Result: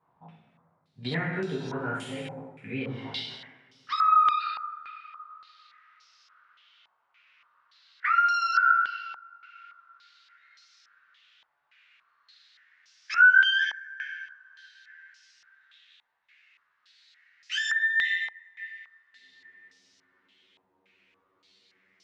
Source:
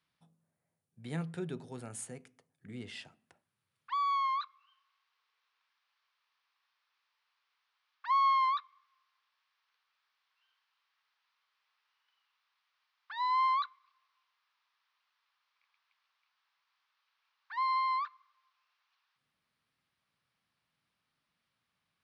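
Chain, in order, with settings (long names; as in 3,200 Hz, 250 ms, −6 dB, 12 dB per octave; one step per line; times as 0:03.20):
pitch glide at a constant tempo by +11.5 semitones starting unshifted
coupled-rooms reverb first 0.99 s, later 3 s, from −24 dB, DRR −7.5 dB
downward compressor 3 to 1, threshold −38 dBFS, peak gain reduction 15.5 dB
low-pass on a step sequencer 3.5 Hz 870–5,400 Hz
level +7.5 dB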